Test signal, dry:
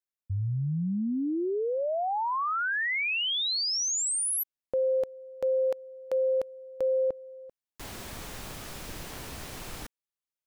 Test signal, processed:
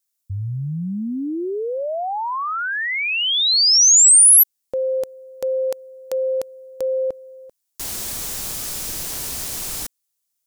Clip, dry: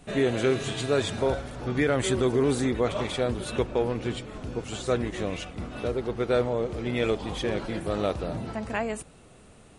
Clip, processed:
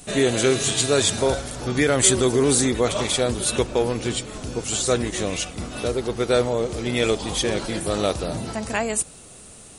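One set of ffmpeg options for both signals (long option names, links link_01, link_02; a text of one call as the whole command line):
ffmpeg -i in.wav -af "bass=frequency=250:gain=-1,treble=frequency=4000:gain=15,volume=4.5dB" out.wav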